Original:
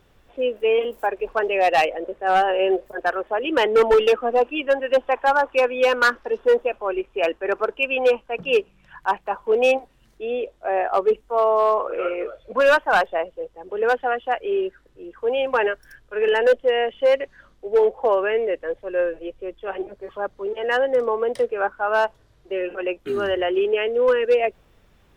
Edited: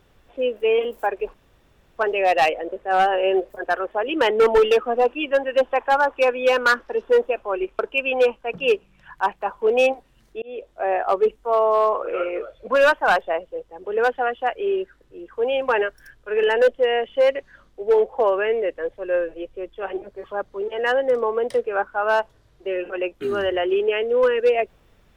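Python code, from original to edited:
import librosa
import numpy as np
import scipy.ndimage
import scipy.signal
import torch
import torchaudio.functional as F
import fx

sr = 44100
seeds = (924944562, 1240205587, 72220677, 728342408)

y = fx.edit(x, sr, fx.insert_room_tone(at_s=1.34, length_s=0.64),
    fx.cut(start_s=7.15, length_s=0.49),
    fx.fade_in_span(start_s=10.27, length_s=0.28), tone=tone)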